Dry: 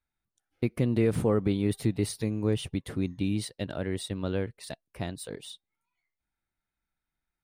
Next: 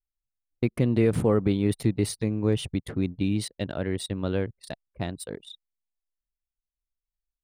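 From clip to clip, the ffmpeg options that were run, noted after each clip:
ffmpeg -i in.wav -af "anlmdn=0.251,volume=3dB" out.wav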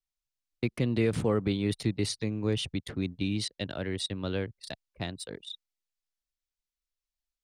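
ffmpeg -i in.wav -filter_complex "[0:a]acrossover=split=100|690|6200[link_01][link_02][link_03][link_04];[link_03]crystalizer=i=4.5:c=0[link_05];[link_04]acompressor=threshold=-50dB:ratio=6[link_06];[link_01][link_02][link_05][link_06]amix=inputs=4:normalize=0,volume=-5dB" out.wav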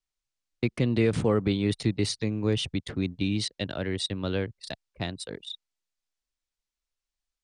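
ffmpeg -i in.wav -af "lowpass=frequency=9200:width=0.5412,lowpass=frequency=9200:width=1.3066,volume=3dB" out.wav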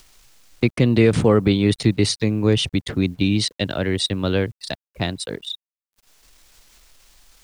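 ffmpeg -i in.wav -af "acompressor=mode=upward:threshold=-39dB:ratio=2.5,acrusher=bits=10:mix=0:aa=0.000001,volume=8.5dB" out.wav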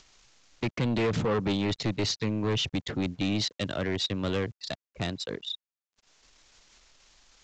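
ffmpeg -i in.wav -af "lowshelf=frequency=71:gain=-7.5,aresample=16000,asoftclip=type=tanh:threshold=-18.5dB,aresample=44100,volume=-4dB" out.wav

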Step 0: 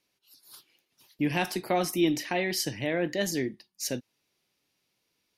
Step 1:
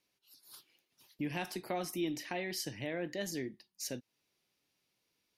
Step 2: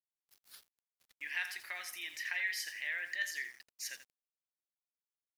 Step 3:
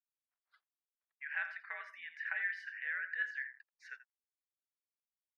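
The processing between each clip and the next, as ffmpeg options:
ffmpeg -i in.wav -af "acompressor=threshold=-40dB:ratio=1.5,volume=-4dB" out.wav
ffmpeg -i in.wav -af "highpass=frequency=1800:width_type=q:width=4.4,aecho=1:1:84|168|252:0.266|0.0798|0.0239,aeval=exprs='val(0)*gte(abs(val(0)),0.00211)':channel_layout=same,volume=-2dB" out.wav
ffmpeg -i in.wav -af "afreqshift=-99,afftdn=noise_reduction=18:noise_floor=-55,asuperpass=centerf=1100:order=4:qfactor=0.91,volume=2dB" out.wav

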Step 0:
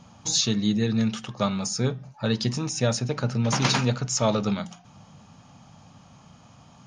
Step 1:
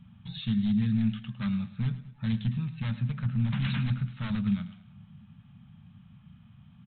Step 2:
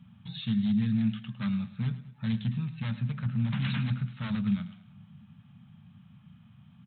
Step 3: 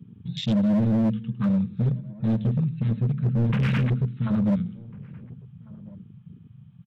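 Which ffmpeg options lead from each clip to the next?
ffmpeg -i in.wav -af "aresample=8000,aeval=exprs='0.112*(abs(mod(val(0)/0.112+3,4)-2)-1)':channel_layout=same,aresample=44100,firequalizer=gain_entry='entry(220,0);entry(320,-27);entry(1600,-9)':delay=0.05:min_phase=1,aecho=1:1:106|212|318|424:0.178|0.08|0.036|0.0162" out.wav
ffmpeg -i in.wav -af "highpass=96" out.wav
ffmpeg -i in.wav -filter_complex "[0:a]afwtdn=0.01,volume=27.5dB,asoftclip=hard,volume=-27.5dB,asplit=2[link_01][link_02];[link_02]adelay=1399,volume=-22dB,highshelf=frequency=4000:gain=-31.5[link_03];[link_01][link_03]amix=inputs=2:normalize=0,volume=9dB" out.wav

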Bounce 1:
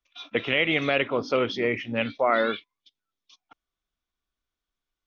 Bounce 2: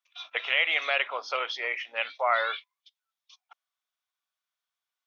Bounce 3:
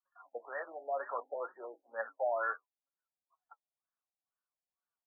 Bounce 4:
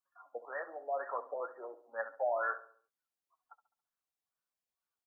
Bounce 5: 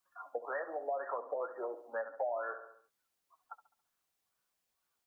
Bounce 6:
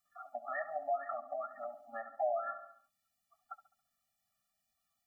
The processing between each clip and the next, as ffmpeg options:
ffmpeg -i in.wav -af "highpass=frequency=700:width=0.5412,highpass=frequency=700:width=1.3066" out.wav
ffmpeg -i in.wav -af "flanger=delay=5.3:depth=6.6:regen=40:speed=0.63:shape=sinusoidal,afftfilt=real='re*lt(b*sr/1024,830*pow(1900/830,0.5+0.5*sin(2*PI*2.1*pts/sr)))':imag='im*lt(b*sr/1024,830*pow(1900/830,0.5+0.5*sin(2*PI*2.1*pts/sr)))':win_size=1024:overlap=0.75" out.wav
ffmpeg -i in.wav -filter_complex "[0:a]asplit=2[link_01][link_02];[link_02]adelay=69,lowpass=frequency=1500:poles=1,volume=-13.5dB,asplit=2[link_03][link_04];[link_04]adelay=69,lowpass=frequency=1500:poles=1,volume=0.52,asplit=2[link_05][link_06];[link_06]adelay=69,lowpass=frequency=1500:poles=1,volume=0.52,asplit=2[link_07][link_08];[link_08]adelay=69,lowpass=frequency=1500:poles=1,volume=0.52,asplit=2[link_09][link_10];[link_10]adelay=69,lowpass=frequency=1500:poles=1,volume=0.52[link_11];[link_01][link_03][link_05][link_07][link_09][link_11]amix=inputs=6:normalize=0" out.wav
ffmpeg -i in.wav -filter_complex "[0:a]acrossover=split=490|670[link_01][link_02][link_03];[link_03]alimiter=level_in=12dB:limit=-24dB:level=0:latency=1:release=441,volume=-12dB[link_04];[link_01][link_02][link_04]amix=inputs=3:normalize=0,acompressor=threshold=-44dB:ratio=4,volume=9dB" out.wav
ffmpeg -i in.wav -af "afftfilt=real='re*eq(mod(floor(b*sr/1024/280),2),0)':imag='im*eq(mod(floor(b*sr/1024/280),2),0)':win_size=1024:overlap=0.75,volume=3.5dB" out.wav

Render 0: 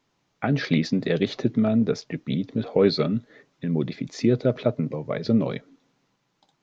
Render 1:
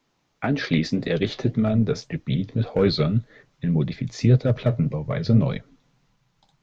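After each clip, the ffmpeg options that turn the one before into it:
ffmpeg -i in.wav -filter_complex "[0:a]asubboost=boost=10.5:cutoff=92,acrossover=split=510|830[link_01][link_02][link_03];[link_02]volume=29.5dB,asoftclip=hard,volume=-29.5dB[link_04];[link_01][link_04][link_03]amix=inputs=3:normalize=0,flanger=delay=3.6:depth=9.8:regen=-57:speed=1.8:shape=sinusoidal,volume=5.5dB" out.wav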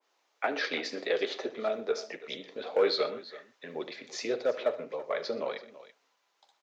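ffmpeg -i in.wav -filter_complex "[0:a]highpass=frequency=430:width=0.5412,highpass=frequency=430:width=1.3066,asplit=2[link_01][link_02];[link_02]aecho=0:1:42|74|122|333:0.133|0.158|0.112|0.133[link_03];[link_01][link_03]amix=inputs=2:normalize=0,adynamicequalizer=threshold=0.00794:dfrequency=1700:dqfactor=0.7:tfrequency=1700:tqfactor=0.7:attack=5:release=100:ratio=0.375:range=2.5:mode=cutabove:tftype=highshelf,volume=-1.5dB" out.wav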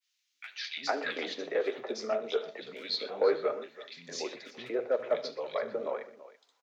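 ffmpeg -i in.wav -filter_complex "[0:a]acrossover=split=220|2200[link_01][link_02][link_03];[link_01]adelay=330[link_04];[link_02]adelay=450[link_05];[link_04][link_05][link_03]amix=inputs=3:normalize=0" out.wav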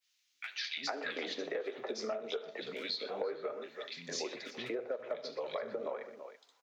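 ffmpeg -i in.wav -af "acompressor=threshold=-37dB:ratio=8,volume=2.5dB" out.wav

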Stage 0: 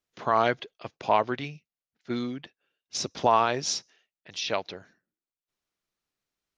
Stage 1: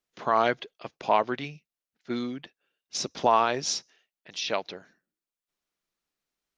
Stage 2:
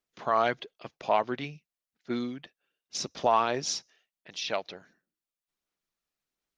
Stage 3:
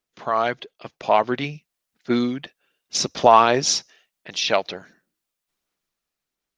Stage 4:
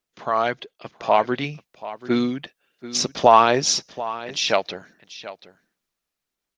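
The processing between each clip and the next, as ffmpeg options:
ffmpeg -i in.wav -af "equalizer=frequency=100:width=3:gain=-11" out.wav
ffmpeg -i in.wav -af "aphaser=in_gain=1:out_gain=1:delay=1.7:decay=0.25:speed=1.4:type=sinusoidal,volume=-3dB" out.wav
ffmpeg -i in.wav -af "dynaudnorm=framelen=220:gausssize=11:maxgain=8dB,volume=3.5dB" out.wav
ffmpeg -i in.wav -af "aecho=1:1:735:0.168" out.wav

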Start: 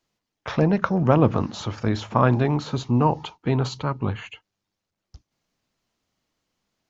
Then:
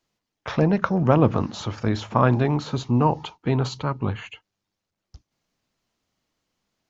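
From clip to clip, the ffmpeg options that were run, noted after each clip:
ffmpeg -i in.wav -af anull out.wav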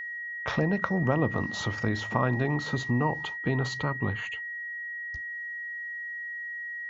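ffmpeg -i in.wav -af "acompressor=threshold=-28dB:ratio=2,aeval=exprs='val(0)+0.02*sin(2*PI*1900*n/s)':channel_layout=same" out.wav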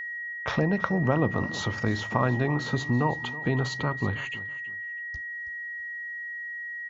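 ffmpeg -i in.wav -af "aecho=1:1:325|650:0.141|0.0339,volume=1.5dB" out.wav

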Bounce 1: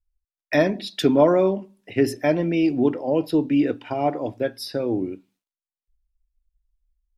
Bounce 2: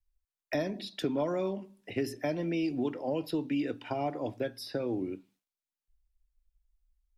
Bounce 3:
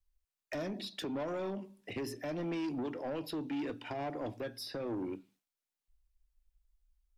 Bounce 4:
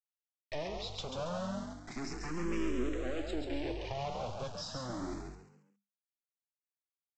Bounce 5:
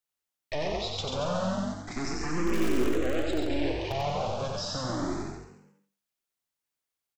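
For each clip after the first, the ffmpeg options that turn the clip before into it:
ffmpeg -i in.wav -filter_complex "[0:a]acrossover=split=200|1200|3700[link_01][link_02][link_03][link_04];[link_01]acompressor=threshold=-40dB:ratio=4[link_05];[link_02]acompressor=threshold=-30dB:ratio=4[link_06];[link_03]acompressor=threshold=-45dB:ratio=4[link_07];[link_04]acompressor=threshold=-44dB:ratio=4[link_08];[link_05][link_06][link_07][link_08]amix=inputs=4:normalize=0,volume=-2dB" out.wav
ffmpeg -i in.wav -af "alimiter=limit=-24dB:level=0:latency=1:release=135,asoftclip=type=tanh:threshold=-32.5dB" out.wav
ffmpeg -i in.wav -filter_complex "[0:a]aresample=16000,acrusher=bits=6:dc=4:mix=0:aa=0.000001,aresample=44100,asplit=5[link_01][link_02][link_03][link_04][link_05];[link_02]adelay=137,afreqshift=50,volume=-5dB[link_06];[link_03]adelay=274,afreqshift=100,volume=-14.4dB[link_07];[link_04]adelay=411,afreqshift=150,volume=-23.7dB[link_08];[link_05]adelay=548,afreqshift=200,volume=-33.1dB[link_09];[link_01][link_06][link_07][link_08][link_09]amix=inputs=5:normalize=0,asplit=2[link_10][link_11];[link_11]afreqshift=0.31[link_12];[link_10][link_12]amix=inputs=2:normalize=1,volume=6dB" out.wav
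ffmpeg -i in.wav -filter_complex "[0:a]asplit=2[link_01][link_02];[link_02]aeval=exprs='(mod(20*val(0)+1,2)-1)/20':channel_layout=same,volume=-11dB[link_03];[link_01][link_03]amix=inputs=2:normalize=0,aecho=1:1:91|182|273:0.668|0.134|0.0267,volume=4.5dB" out.wav

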